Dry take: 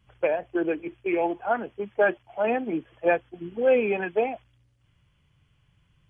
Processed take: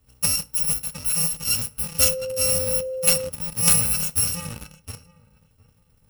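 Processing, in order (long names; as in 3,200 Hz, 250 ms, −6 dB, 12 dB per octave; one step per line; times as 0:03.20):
samples in bit-reversed order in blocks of 128 samples
low-shelf EQ 160 Hz +6.5 dB
feedback echo with a low-pass in the loop 711 ms, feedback 23%, low-pass 2,000 Hz, level −10.5 dB
in parallel at −5 dB: log-companded quantiser 2 bits
on the sum: feedback delay network reverb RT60 0.34 s, low-frequency decay 1×, high-frequency decay 0.75×, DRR 12 dB
0:01.99–0:03.28: steady tone 520 Hz −25 dBFS
level −1 dB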